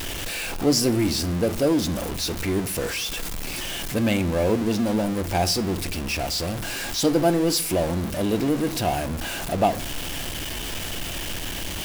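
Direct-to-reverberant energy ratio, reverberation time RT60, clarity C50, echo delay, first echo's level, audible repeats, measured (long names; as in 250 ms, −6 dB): 12.0 dB, 0.60 s, 18.0 dB, no echo audible, no echo audible, no echo audible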